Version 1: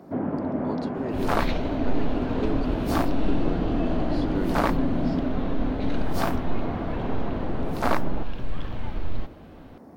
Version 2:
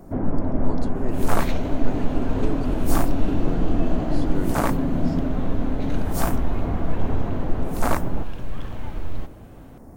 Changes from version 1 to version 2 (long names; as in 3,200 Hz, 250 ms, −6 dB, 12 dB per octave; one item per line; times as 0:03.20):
first sound: remove high-pass filter 170 Hz 12 dB per octave
master: add high shelf with overshoot 5,800 Hz +9 dB, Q 1.5